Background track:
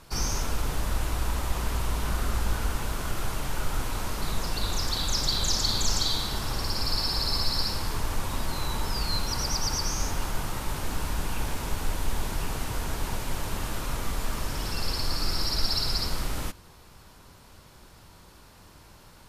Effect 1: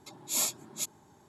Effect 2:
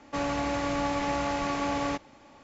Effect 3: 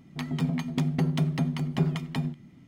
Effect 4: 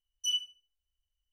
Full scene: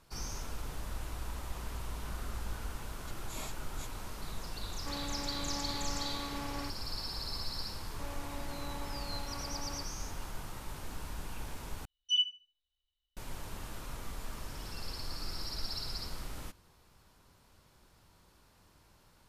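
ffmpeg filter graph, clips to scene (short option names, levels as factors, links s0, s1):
-filter_complex "[2:a]asplit=2[s0][s1];[0:a]volume=0.251[s2];[1:a]acrossover=split=3100[s3][s4];[s4]acompressor=threshold=0.00891:ratio=4:attack=1:release=60[s5];[s3][s5]amix=inputs=2:normalize=0[s6];[s0]equalizer=f=650:t=o:w=0.25:g=-11.5[s7];[4:a]lowpass=f=3800:t=q:w=9.6[s8];[s2]asplit=2[s9][s10];[s9]atrim=end=11.854[s11];[s8]atrim=end=1.32,asetpts=PTS-STARTPTS,volume=0.531[s12];[s10]atrim=start=13.166[s13];[s6]atrim=end=1.28,asetpts=PTS-STARTPTS,volume=0.501,afade=t=in:d=0.004:c=hsin,afade=t=out:st=1.276:d=0.004:c=hsin,adelay=3010[s14];[s7]atrim=end=2.43,asetpts=PTS-STARTPTS,volume=0.266,afade=t=in:d=0.004:c=hsin,afade=t=out:st=2.426:d=0.004:c=hsin,adelay=208593S[s15];[s1]atrim=end=2.43,asetpts=PTS-STARTPTS,volume=0.141,afade=t=in:d=0.004:c=hsin,afade=t=out:st=2.426:d=0.004:c=hsin,adelay=346626S[s16];[s11][s12]acrossfade=d=0.004:c1=hsin:c2=hsin[s17];[s17][s13]acrossfade=d=0.004:c1=hsin:c2=hsin[s18];[s18][s14][s15][s16]amix=inputs=4:normalize=0"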